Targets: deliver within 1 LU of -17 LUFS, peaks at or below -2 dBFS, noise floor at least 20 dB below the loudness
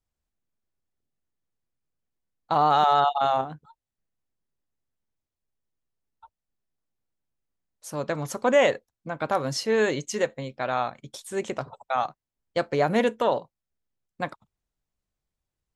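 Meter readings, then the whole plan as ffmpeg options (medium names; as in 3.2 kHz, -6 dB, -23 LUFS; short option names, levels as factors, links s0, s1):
loudness -25.5 LUFS; peak level -9.5 dBFS; loudness target -17.0 LUFS
-> -af "volume=2.66,alimiter=limit=0.794:level=0:latency=1"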